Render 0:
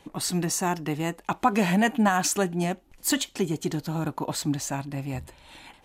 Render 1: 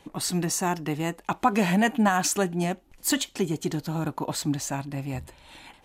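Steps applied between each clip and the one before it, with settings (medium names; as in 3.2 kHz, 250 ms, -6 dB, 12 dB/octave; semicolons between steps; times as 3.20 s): no audible change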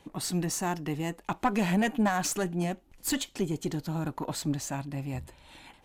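single-diode clipper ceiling -19 dBFS; bass shelf 320 Hz +3 dB; trim -4 dB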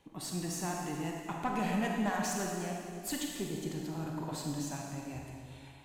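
reverberation RT60 2.1 s, pre-delay 28 ms, DRR -1 dB; trim -8.5 dB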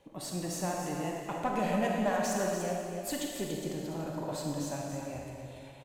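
peaking EQ 560 Hz +12.5 dB 0.41 oct; on a send: delay 288 ms -8.5 dB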